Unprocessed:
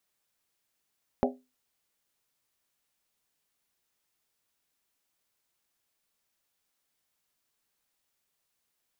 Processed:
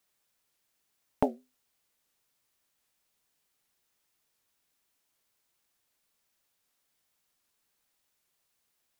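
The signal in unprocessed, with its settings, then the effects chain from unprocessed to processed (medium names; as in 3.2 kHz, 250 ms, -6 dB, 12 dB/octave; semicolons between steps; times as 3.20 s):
skin hit, lowest mode 254 Hz, modes 7, decay 0.27 s, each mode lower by 1 dB, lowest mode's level -23 dB
in parallel at -11 dB: short-mantissa float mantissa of 2-bit; on the sum: warped record 78 rpm, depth 160 cents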